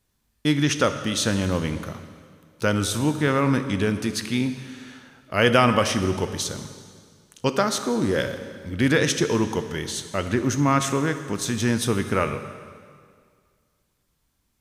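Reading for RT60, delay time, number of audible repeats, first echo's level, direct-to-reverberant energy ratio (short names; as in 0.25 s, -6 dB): 2.0 s, none, none, none, 8.5 dB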